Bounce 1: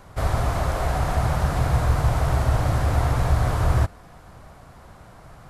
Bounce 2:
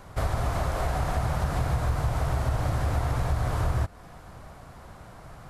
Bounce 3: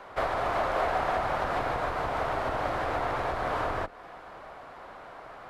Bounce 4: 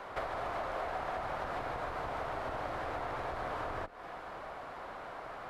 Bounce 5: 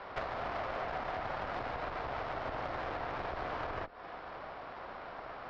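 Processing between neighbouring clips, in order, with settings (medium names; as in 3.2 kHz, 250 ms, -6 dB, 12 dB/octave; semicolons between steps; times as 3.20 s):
compression 3:1, threshold -24 dBFS, peak gain reduction 8 dB
octave divider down 2 oct, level -1 dB; three-band isolator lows -22 dB, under 330 Hz, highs -18 dB, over 3.8 kHz; trim +5 dB
compression 3:1, threshold -39 dBFS, peak gain reduction 11.5 dB; trim +1 dB
brick-wall FIR low-pass 5.6 kHz; valve stage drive 32 dB, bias 0.8; trim +4 dB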